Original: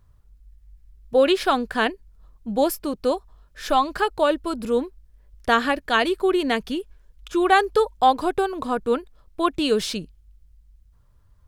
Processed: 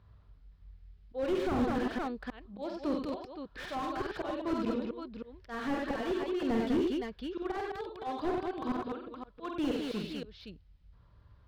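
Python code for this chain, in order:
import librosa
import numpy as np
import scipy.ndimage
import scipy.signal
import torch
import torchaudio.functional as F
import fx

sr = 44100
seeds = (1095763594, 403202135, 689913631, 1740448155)

p1 = scipy.signal.sosfilt(scipy.signal.butter(2, 57.0, 'highpass', fs=sr, output='sos'), x)
p2 = fx.auto_swell(p1, sr, attack_ms=607.0)
p3 = scipy.signal.sosfilt(scipy.signal.butter(6, 4600.0, 'lowpass', fs=sr, output='sos'), p2)
p4 = p3 + fx.echo_multitap(p3, sr, ms=(49, 84, 93, 96, 202, 518), db=(-5.0, -14.0, -12.0, -8.5, -6.0, -10.5), dry=0)
y = fx.slew_limit(p4, sr, full_power_hz=19.0)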